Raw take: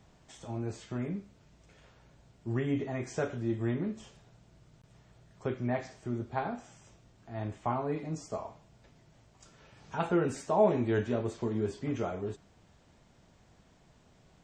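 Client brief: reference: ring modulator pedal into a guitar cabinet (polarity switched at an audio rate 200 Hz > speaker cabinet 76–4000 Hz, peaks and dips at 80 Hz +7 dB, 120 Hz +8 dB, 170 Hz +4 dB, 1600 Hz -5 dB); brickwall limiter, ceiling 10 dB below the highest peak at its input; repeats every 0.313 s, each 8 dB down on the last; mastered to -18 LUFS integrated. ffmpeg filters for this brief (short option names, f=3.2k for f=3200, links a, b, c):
-af "alimiter=limit=-23.5dB:level=0:latency=1,aecho=1:1:313|626|939|1252|1565:0.398|0.159|0.0637|0.0255|0.0102,aeval=exprs='val(0)*sgn(sin(2*PI*200*n/s))':c=same,highpass=76,equalizer=f=80:t=q:w=4:g=7,equalizer=f=120:t=q:w=4:g=8,equalizer=f=170:t=q:w=4:g=4,equalizer=f=1.6k:t=q:w=4:g=-5,lowpass=f=4k:w=0.5412,lowpass=f=4k:w=1.3066,volume=17dB"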